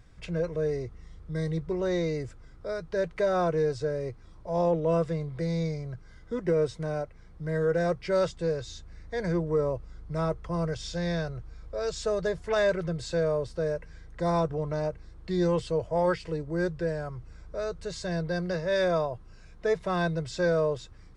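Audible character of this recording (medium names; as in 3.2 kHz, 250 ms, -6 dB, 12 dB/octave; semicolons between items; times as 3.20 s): noise floor -50 dBFS; spectral tilt -6.0 dB/octave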